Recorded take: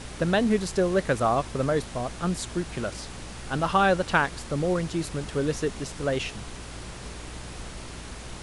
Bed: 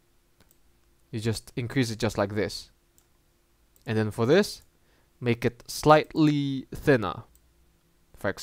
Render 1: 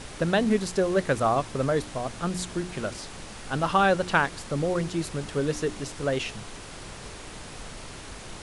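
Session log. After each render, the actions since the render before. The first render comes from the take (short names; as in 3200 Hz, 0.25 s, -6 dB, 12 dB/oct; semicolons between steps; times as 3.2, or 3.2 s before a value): de-hum 60 Hz, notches 6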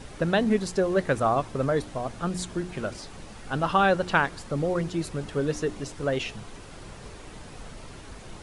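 denoiser 7 dB, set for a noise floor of -42 dBFS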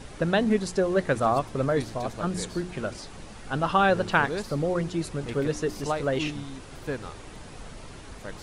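add bed -11.5 dB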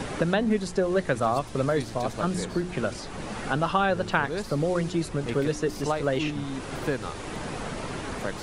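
three-band squash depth 70%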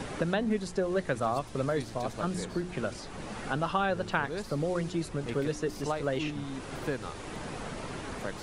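gain -5 dB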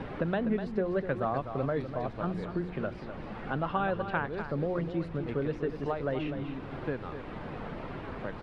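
air absorption 390 m; echo 0.249 s -9.5 dB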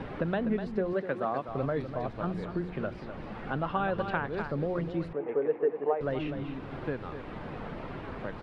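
0.93–1.49 HPF 200 Hz; 3.98–4.48 three-band squash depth 70%; 5.13–6.01 speaker cabinet 360–2200 Hz, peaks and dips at 450 Hz +9 dB, 800 Hz +6 dB, 1400 Hz -6 dB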